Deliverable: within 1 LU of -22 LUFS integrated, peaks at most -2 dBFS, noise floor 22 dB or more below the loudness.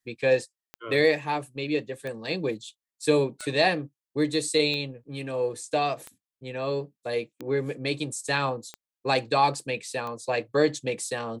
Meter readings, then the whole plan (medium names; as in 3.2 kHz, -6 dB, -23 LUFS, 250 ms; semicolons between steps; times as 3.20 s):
clicks found 8; loudness -27.5 LUFS; peak level -8.5 dBFS; loudness target -22.0 LUFS
-> de-click; trim +5.5 dB